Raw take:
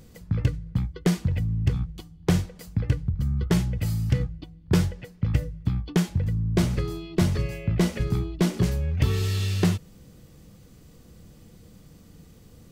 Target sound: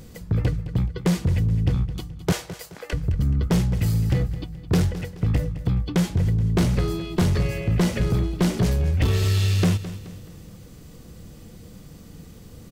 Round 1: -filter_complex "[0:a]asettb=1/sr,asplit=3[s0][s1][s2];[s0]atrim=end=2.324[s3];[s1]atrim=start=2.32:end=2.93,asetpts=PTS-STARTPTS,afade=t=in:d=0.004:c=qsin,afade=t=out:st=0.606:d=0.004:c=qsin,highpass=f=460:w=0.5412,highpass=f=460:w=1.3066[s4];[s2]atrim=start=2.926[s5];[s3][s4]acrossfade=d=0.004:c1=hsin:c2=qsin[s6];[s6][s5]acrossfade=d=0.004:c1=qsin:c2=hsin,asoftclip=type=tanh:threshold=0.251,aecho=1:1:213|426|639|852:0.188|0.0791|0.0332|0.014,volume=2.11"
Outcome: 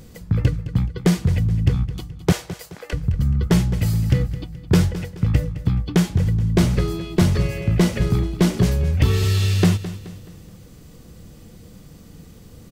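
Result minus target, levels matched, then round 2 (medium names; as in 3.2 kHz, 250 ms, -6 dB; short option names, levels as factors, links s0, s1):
saturation: distortion -12 dB
-filter_complex "[0:a]asettb=1/sr,asplit=3[s0][s1][s2];[s0]atrim=end=2.324[s3];[s1]atrim=start=2.32:end=2.93,asetpts=PTS-STARTPTS,afade=t=in:d=0.004:c=qsin,afade=t=out:st=0.606:d=0.004:c=qsin,highpass=f=460:w=0.5412,highpass=f=460:w=1.3066[s4];[s2]atrim=start=2.926[s5];[s3][s4]acrossfade=d=0.004:c1=hsin:c2=qsin[s6];[s6][s5]acrossfade=d=0.004:c1=qsin:c2=hsin,asoftclip=type=tanh:threshold=0.0841,aecho=1:1:213|426|639|852:0.188|0.0791|0.0332|0.014,volume=2.11"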